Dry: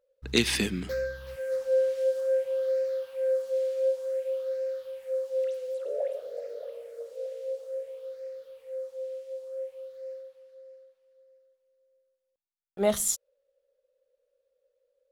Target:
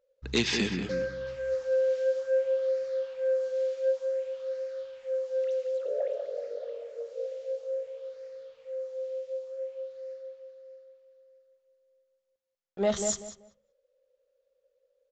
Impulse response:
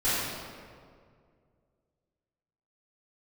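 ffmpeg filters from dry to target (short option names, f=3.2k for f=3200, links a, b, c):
-filter_complex "[0:a]aresample=16000,asoftclip=type=tanh:threshold=-17dB,aresample=44100,asplit=2[a][b];[b]adelay=191,lowpass=f=2.1k:p=1,volume=-6dB,asplit=2[c][d];[d]adelay=191,lowpass=f=2.1k:p=1,volume=0.24,asplit=2[e][f];[f]adelay=191,lowpass=f=2.1k:p=1,volume=0.24[g];[a][c][e][g]amix=inputs=4:normalize=0"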